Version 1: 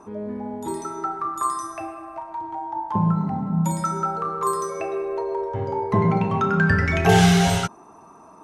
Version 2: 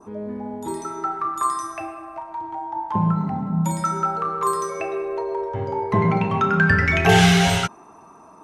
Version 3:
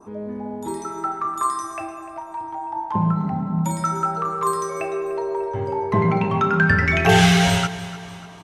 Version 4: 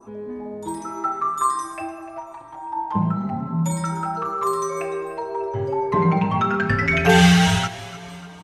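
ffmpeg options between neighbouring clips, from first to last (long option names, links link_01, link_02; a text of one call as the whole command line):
ffmpeg -i in.wav -af "adynamicequalizer=threshold=0.0141:dfrequency=2400:dqfactor=0.9:tfrequency=2400:tqfactor=0.9:attack=5:release=100:ratio=0.375:range=3:mode=boostabove:tftype=bell" out.wav
ffmpeg -i in.wav -af "aecho=1:1:297|594|891|1188:0.158|0.0792|0.0396|0.0198" out.wav
ffmpeg -i in.wav -filter_complex "[0:a]asplit=2[link_01][link_02];[link_02]adelay=5.6,afreqshift=0.9[link_03];[link_01][link_03]amix=inputs=2:normalize=1,volume=2.5dB" out.wav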